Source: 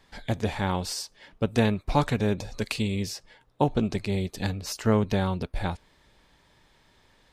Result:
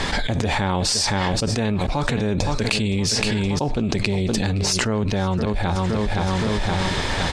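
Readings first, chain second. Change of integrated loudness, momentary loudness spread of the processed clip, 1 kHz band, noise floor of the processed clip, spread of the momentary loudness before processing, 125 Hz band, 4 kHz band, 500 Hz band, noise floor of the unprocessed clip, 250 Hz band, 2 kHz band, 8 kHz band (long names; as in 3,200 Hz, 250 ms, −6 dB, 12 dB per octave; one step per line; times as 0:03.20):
+6.0 dB, 3 LU, +6.5 dB, −25 dBFS, 9 LU, +7.0 dB, +12.5 dB, +4.5 dB, −63 dBFS, +5.5 dB, +10.5 dB, +13.0 dB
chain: low-pass filter 9,300 Hz 24 dB per octave
repeating echo 518 ms, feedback 37%, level −17 dB
envelope flattener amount 100%
level −3 dB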